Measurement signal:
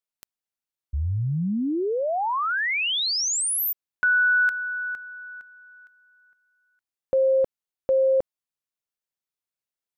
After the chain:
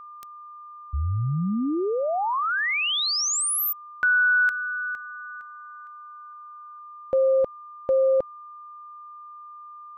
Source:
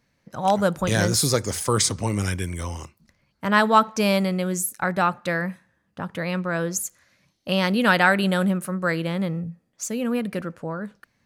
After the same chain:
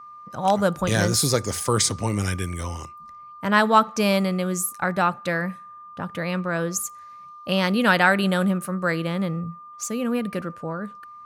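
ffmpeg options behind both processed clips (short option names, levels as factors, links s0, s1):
-af "aeval=exprs='val(0)+0.01*sin(2*PI*1200*n/s)':c=same"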